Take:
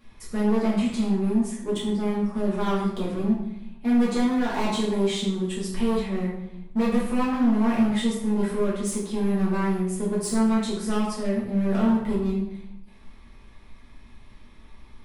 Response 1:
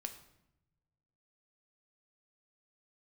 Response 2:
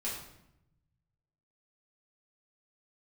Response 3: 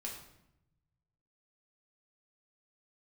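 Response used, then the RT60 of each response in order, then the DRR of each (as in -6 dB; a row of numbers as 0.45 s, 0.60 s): 2; 0.85 s, 0.80 s, 0.80 s; 6.0 dB, -7.5 dB, -2.5 dB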